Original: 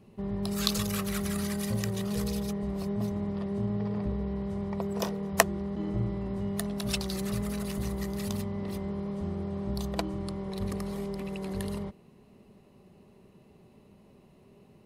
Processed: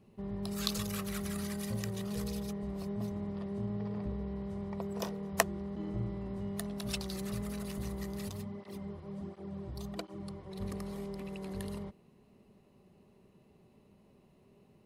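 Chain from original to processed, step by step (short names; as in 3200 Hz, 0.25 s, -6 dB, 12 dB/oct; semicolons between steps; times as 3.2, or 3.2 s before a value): 8.29–10.59 tape flanging out of phase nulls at 1.4 Hz, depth 5.2 ms; gain -6 dB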